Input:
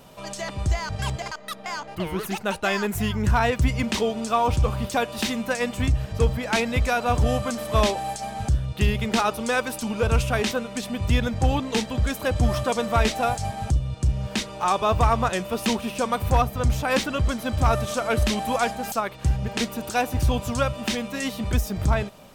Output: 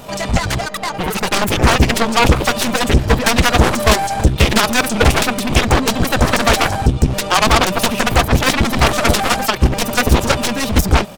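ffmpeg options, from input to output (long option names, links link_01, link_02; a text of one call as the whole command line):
ffmpeg -i in.wav -af "aeval=exprs='0.299*(cos(1*acos(clip(val(0)/0.299,-1,1)))-cos(1*PI/2))+0.00188*(cos(6*acos(clip(val(0)/0.299,-1,1)))-cos(6*PI/2))+0.133*(cos(7*acos(clip(val(0)/0.299,-1,1)))-cos(7*PI/2))+0.0335*(cos(8*acos(clip(val(0)/0.299,-1,1)))-cos(8*PI/2))':channel_layout=same,atempo=2,volume=7.5dB" out.wav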